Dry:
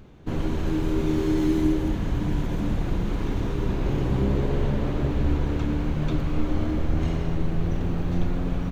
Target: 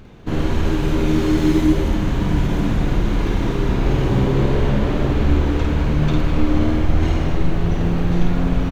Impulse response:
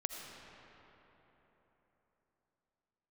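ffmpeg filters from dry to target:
-af "equalizer=f=2500:w=0.34:g=3,aecho=1:1:52.48|201.2:0.708|0.316,volume=1.68"

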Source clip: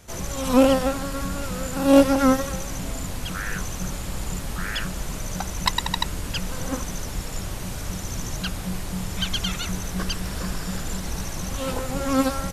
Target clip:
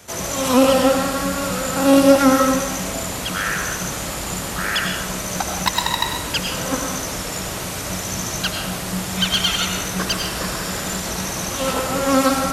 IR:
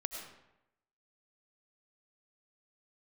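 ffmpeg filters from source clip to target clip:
-filter_complex "[0:a]highpass=64,lowshelf=f=210:g=-9,asplit=2[s0][s1];[s1]alimiter=limit=0.2:level=0:latency=1,volume=0.841[s2];[s0][s2]amix=inputs=2:normalize=0,acrossover=split=360|3000[s3][s4][s5];[s4]acompressor=threshold=0.126:ratio=6[s6];[s3][s6][s5]amix=inputs=3:normalize=0,acrossover=split=2300[s7][s8];[s8]asoftclip=type=hard:threshold=0.15[s9];[s7][s9]amix=inputs=2:normalize=0[s10];[1:a]atrim=start_sample=2205[s11];[s10][s11]afir=irnorm=-1:irlink=0,volume=1.58"

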